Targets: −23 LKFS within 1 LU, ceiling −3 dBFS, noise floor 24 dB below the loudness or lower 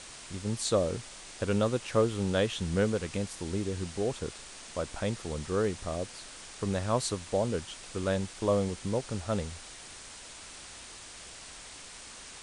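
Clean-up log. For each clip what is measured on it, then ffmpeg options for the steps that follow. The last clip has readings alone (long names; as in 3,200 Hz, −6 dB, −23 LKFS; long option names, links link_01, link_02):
background noise floor −47 dBFS; target noise floor −56 dBFS; integrated loudness −32.0 LKFS; sample peak −13.5 dBFS; target loudness −23.0 LKFS
→ -af "afftdn=noise_reduction=9:noise_floor=-47"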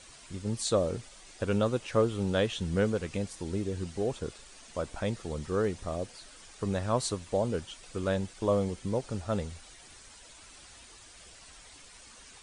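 background noise floor −53 dBFS; target noise floor −56 dBFS
→ -af "afftdn=noise_reduction=6:noise_floor=-53"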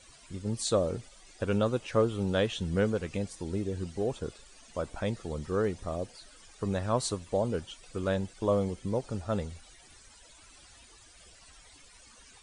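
background noise floor −56 dBFS; integrated loudness −32.0 LKFS; sample peak −14.0 dBFS; target loudness −23.0 LKFS
→ -af "volume=9dB"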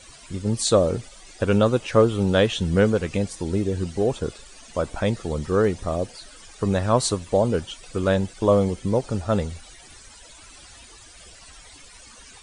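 integrated loudness −23.0 LKFS; sample peak −5.0 dBFS; background noise floor −47 dBFS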